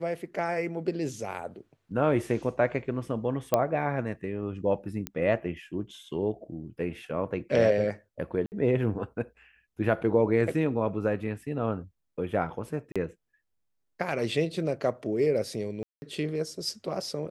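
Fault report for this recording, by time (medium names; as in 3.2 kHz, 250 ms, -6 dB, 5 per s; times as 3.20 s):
3.54 s: pop -9 dBFS
5.07 s: pop -15 dBFS
8.46–8.52 s: dropout 59 ms
12.92–12.96 s: dropout 36 ms
15.83–16.02 s: dropout 190 ms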